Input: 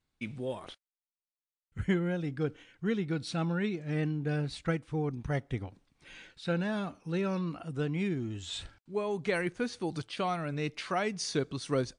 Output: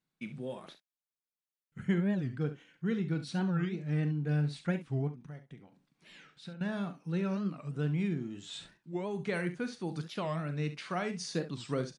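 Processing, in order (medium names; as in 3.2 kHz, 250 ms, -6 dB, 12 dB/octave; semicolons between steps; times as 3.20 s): peaking EQ 1.5 kHz +2 dB; 5.07–6.61 s: compression 16:1, threshold -42 dBFS, peak gain reduction 17 dB; resonant low shelf 110 Hz -11.5 dB, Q 3; early reflections 40 ms -12.5 dB, 68 ms -12.5 dB; warped record 45 rpm, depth 250 cents; trim -5.5 dB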